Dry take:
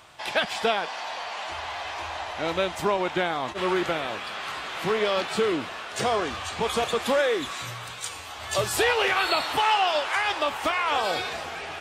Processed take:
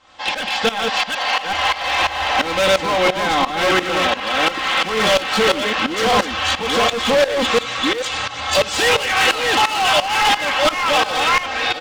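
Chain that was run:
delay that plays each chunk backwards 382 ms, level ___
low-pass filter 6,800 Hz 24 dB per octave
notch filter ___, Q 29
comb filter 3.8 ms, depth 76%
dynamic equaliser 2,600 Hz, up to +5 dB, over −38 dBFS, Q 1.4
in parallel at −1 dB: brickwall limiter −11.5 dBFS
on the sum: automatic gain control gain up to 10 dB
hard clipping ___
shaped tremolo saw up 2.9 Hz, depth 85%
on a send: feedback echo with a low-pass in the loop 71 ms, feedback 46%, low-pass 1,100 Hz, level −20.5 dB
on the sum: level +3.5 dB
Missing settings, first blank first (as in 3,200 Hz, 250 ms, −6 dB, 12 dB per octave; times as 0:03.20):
−1 dB, 2,400 Hz, −13.5 dBFS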